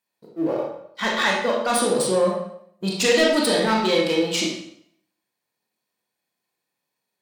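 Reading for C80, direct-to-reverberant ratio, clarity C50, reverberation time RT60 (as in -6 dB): 5.5 dB, -3.0 dB, 1.5 dB, 0.70 s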